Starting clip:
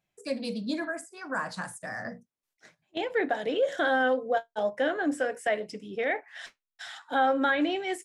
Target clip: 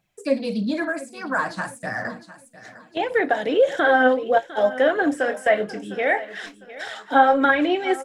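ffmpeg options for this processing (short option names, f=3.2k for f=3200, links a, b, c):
-filter_complex "[0:a]aphaser=in_gain=1:out_gain=1:delay=3.9:decay=0.4:speed=1.6:type=triangular,aecho=1:1:704|1408|2112:0.141|0.048|0.0163,acrossover=split=2700[a][b];[b]acompressor=threshold=-47dB:ratio=4:attack=1:release=60[c];[a][c]amix=inputs=2:normalize=0,asettb=1/sr,asplit=3[d][e][f];[d]atrim=end=5.254[g];[e]atrim=start=5.25:end=7.45,asetpts=PTS-STARTPTS,afade=t=in:d=0.004:c=qsin,afade=t=out:st=2.196:d=0.004:c=qsin,asplit=2[h][i];[i]adelay=25,volume=-9dB[j];[h][j]amix=inputs=2:normalize=0,atrim=end_sample=97020[k];[f]atrim=start=7.446[l];[g][k]acrossfade=d=0.004:c1=hsin:c2=qsin[m];[m][l]acrossfade=d=0.004:c1=qsin:c2=hsin,volume=7.5dB"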